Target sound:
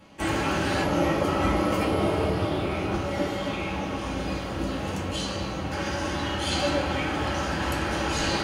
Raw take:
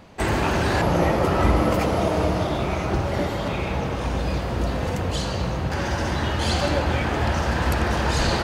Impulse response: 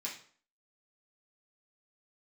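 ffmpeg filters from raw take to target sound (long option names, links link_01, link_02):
-filter_complex "[0:a]asettb=1/sr,asplit=3[link_01][link_02][link_03];[link_01]atrim=end=1.794[link_04];[link_02]atrim=start=1.79:end=2.91,asetpts=PTS-STARTPTS,afade=type=in:duration=0.004:curve=qsin,afade=type=out:start_time=1.116:duration=0.004:curve=qsin,equalizer=frequency=100:width_type=o:width=0.33:gain=10,equalizer=frequency=400:width_type=o:width=0.33:gain=6,equalizer=frequency=6300:width_type=o:width=0.33:gain=-9[link_05];[link_03]atrim=start=2.906[link_06];[link_04][link_05]acrossfade=duration=0.004:curve1=hsin:curve2=qsin[link_07];[link_07][link_06]acrossfade=duration=0.004:curve1=qsin:curve2=hsin[link_08];[1:a]atrim=start_sample=2205,asetrate=57330,aresample=44100[link_09];[link_08][link_09]afir=irnorm=-1:irlink=0"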